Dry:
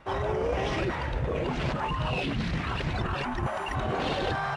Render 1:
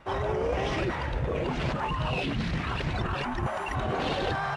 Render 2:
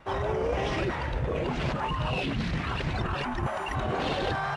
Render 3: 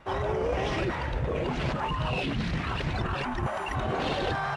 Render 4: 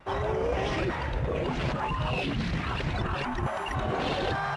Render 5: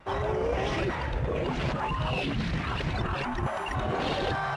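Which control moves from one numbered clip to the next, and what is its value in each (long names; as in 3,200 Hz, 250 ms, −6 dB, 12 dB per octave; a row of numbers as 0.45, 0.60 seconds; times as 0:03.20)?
pitch vibrato, speed: 10, 3.8, 6.5, 0.93, 1.5 Hertz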